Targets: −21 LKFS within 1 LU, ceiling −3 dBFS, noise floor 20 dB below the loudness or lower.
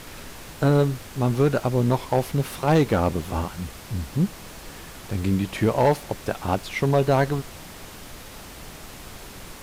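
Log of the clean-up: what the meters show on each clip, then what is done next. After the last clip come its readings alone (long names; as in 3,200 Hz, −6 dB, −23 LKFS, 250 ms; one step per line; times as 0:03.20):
share of clipped samples 0.8%; peaks flattened at −12.0 dBFS; background noise floor −41 dBFS; target noise floor −44 dBFS; integrated loudness −23.5 LKFS; sample peak −12.0 dBFS; target loudness −21.0 LKFS
→ clipped peaks rebuilt −12 dBFS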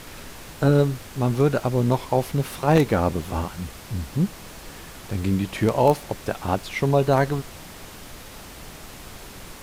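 share of clipped samples 0.0%; background noise floor −41 dBFS; target noise floor −43 dBFS
→ noise reduction from a noise print 6 dB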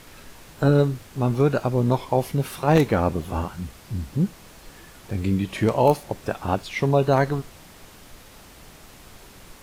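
background noise floor −47 dBFS; integrated loudness −23.0 LKFS; sample peak −4.0 dBFS; target loudness −21.0 LKFS
→ level +2 dB
brickwall limiter −3 dBFS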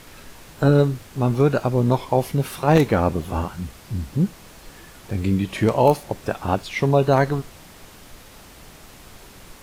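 integrated loudness −21.0 LKFS; sample peak −3.0 dBFS; background noise floor −45 dBFS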